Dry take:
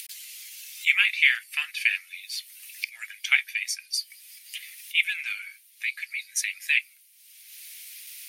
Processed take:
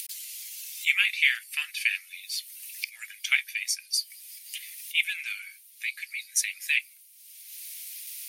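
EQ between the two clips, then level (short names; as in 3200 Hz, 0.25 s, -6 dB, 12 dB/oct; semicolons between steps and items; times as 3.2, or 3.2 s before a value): high shelf 3100 Hz +10.5 dB; -6.5 dB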